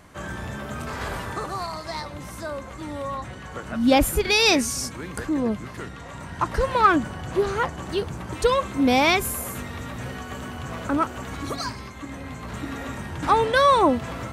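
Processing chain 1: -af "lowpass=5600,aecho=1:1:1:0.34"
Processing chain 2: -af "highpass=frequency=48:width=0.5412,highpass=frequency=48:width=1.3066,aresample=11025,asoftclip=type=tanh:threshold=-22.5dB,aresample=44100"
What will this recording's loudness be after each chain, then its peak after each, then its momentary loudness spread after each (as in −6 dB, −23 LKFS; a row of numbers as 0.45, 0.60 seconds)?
−24.0, −30.0 LKFS; −5.0, −17.5 dBFS; 17, 11 LU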